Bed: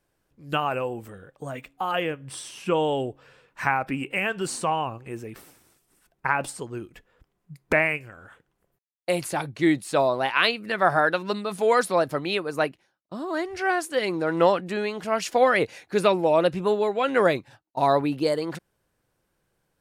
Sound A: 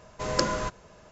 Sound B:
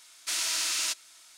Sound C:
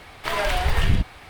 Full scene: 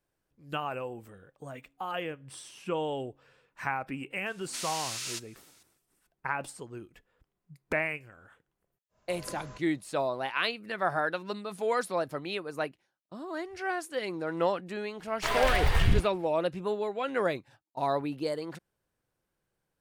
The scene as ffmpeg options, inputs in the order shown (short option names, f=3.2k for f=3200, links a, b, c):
-filter_complex "[0:a]volume=-8.5dB[a];[3:a]agate=range=-33dB:threshold=-36dB:ratio=3:release=100:detection=peak[b];[2:a]atrim=end=1.37,asetpts=PTS-STARTPTS,volume=-7.5dB,afade=t=in:d=0.004:c=hsin,afade=t=out:st=1.366:d=0.004:c=hsin,adelay=4260[c];[1:a]atrim=end=1.11,asetpts=PTS-STARTPTS,volume=-18dB,afade=t=in:d=0.1,afade=t=out:st=1.01:d=0.1,adelay=8890[d];[b]atrim=end=1.29,asetpts=PTS-STARTPTS,volume=-4dB,afade=t=in:d=0.004:c=hsin,afade=t=out:st=1.286:d=0.004:c=hsin,adelay=14980[e];[a][c][d][e]amix=inputs=4:normalize=0"